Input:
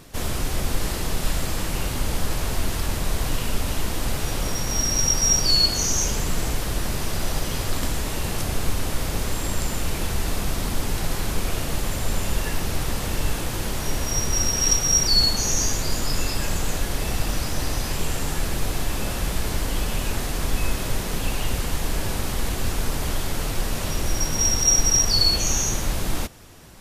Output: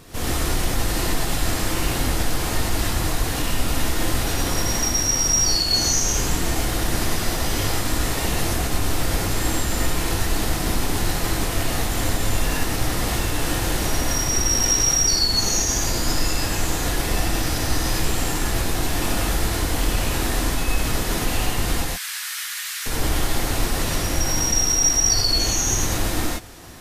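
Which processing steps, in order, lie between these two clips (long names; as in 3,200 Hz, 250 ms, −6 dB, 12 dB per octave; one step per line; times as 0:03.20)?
brickwall limiter −16.5 dBFS, peak gain reduction 9.5 dB
0:21.84–0:22.86: inverse Chebyshev high-pass filter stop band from 550 Hz, stop band 50 dB
reverb whose tail is shaped and stops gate 140 ms rising, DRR −5 dB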